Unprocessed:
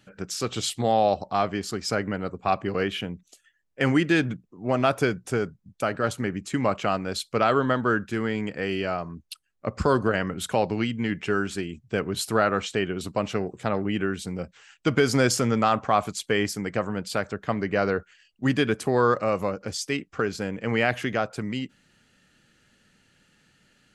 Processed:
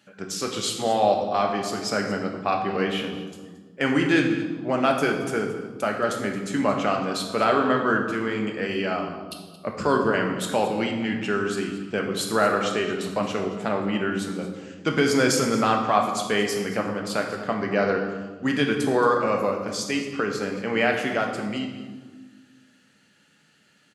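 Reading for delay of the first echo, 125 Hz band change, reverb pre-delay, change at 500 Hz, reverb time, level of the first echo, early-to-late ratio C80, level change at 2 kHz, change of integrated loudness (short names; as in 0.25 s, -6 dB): 0.224 s, -3.0 dB, 4 ms, +1.5 dB, 1.5 s, -15.5 dB, 7.0 dB, +2.0 dB, +1.5 dB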